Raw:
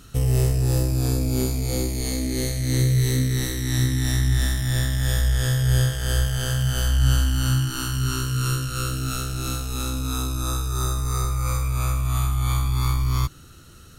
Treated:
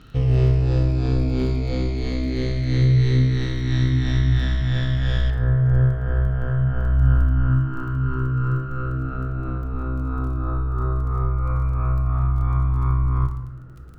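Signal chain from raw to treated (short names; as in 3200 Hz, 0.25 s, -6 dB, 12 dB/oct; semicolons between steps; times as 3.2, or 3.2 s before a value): LPF 3800 Hz 24 dB/oct, from 5.3 s 1500 Hz; crackle 14/s -39 dBFS; reverb RT60 0.90 s, pre-delay 6 ms, DRR 6.5 dB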